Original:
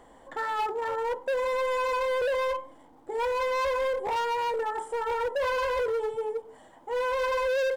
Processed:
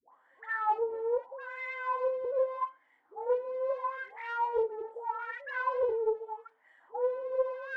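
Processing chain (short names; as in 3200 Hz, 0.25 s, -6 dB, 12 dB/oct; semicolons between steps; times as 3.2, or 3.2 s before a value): wah 0.8 Hz 380–2000 Hz, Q 6.4; dispersion highs, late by 0.132 s, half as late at 770 Hz; Doppler distortion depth 0.16 ms; gain +4 dB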